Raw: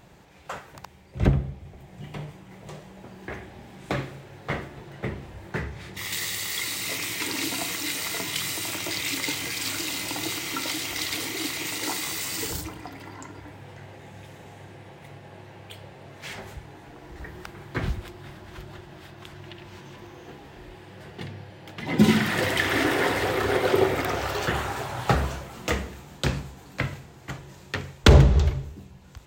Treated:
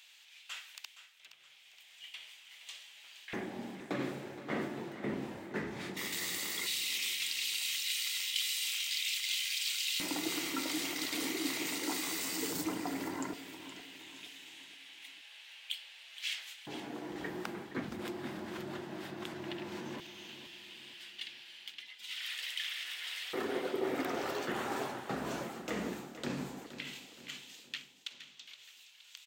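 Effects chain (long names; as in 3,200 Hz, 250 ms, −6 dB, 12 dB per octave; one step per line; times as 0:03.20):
reversed playback
downward compressor 16 to 1, threshold −34 dBFS, peak gain reduction 26 dB
reversed playback
auto-filter high-pass square 0.15 Hz 240–3,000 Hz
repeating echo 469 ms, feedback 45%, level −12.5 dB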